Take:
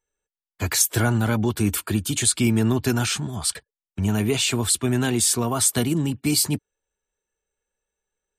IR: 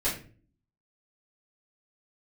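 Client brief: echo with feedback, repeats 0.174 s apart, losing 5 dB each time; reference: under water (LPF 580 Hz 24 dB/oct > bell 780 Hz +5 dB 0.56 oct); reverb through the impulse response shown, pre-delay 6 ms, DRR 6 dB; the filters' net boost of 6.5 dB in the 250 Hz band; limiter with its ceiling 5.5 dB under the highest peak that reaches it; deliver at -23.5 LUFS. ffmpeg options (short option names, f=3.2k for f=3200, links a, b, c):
-filter_complex "[0:a]equalizer=f=250:t=o:g=7.5,alimiter=limit=-10dB:level=0:latency=1,aecho=1:1:174|348|522|696|870|1044|1218:0.562|0.315|0.176|0.0988|0.0553|0.031|0.0173,asplit=2[a][b];[1:a]atrim=start_sample=2205,adelay=6[c];[b][c]afir=irnorm=-1:irlink=0,volume=-14.5dB[d];[a][d]amix=inputs=2:normalize=0,lowpass=f=580:w=0.5412,lowpass=f=580:w=1.3066,equalizer=f=780:t=o:w=0.56:g=5,volume=-4dB"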